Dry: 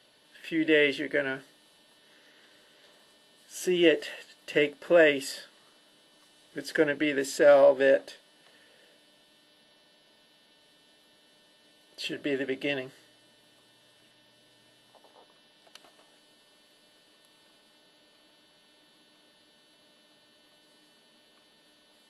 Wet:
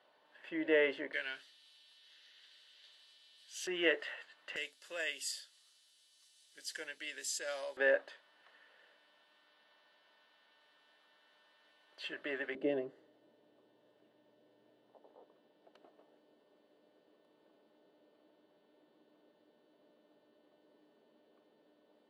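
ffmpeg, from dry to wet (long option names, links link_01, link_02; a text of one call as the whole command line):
ffmpeg -i in.wav -af "asetnsamples=nb_out_samples=441:pad=0,asendcmd='1.13 bandpass f 3700;3.67 bandpass f 1400;4.56 bandpass f 6800;7.77 bandpass f 1300;12.55 bandpass f 420',bandpass=frequency=890:width_type=q:width=1.3:csg=0" out.wav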